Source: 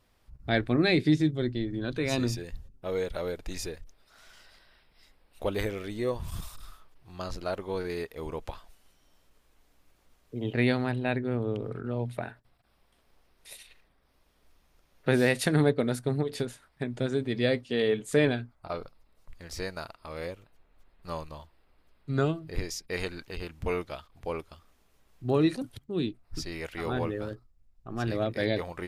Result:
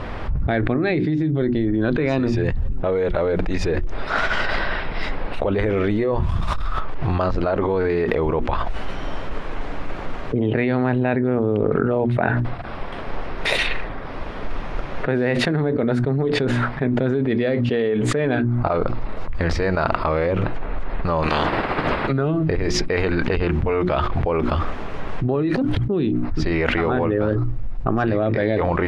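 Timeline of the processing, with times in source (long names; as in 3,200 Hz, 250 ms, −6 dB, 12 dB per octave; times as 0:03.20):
0:21.22–0:22.11: ceiling on every frequency bin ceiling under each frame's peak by 27 dB
whole clip: low-pass filter 1,900 Hz 12 dB per octave; mains-hum notches 60/120/180/240/300/360 Hz; envelope flattener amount 100%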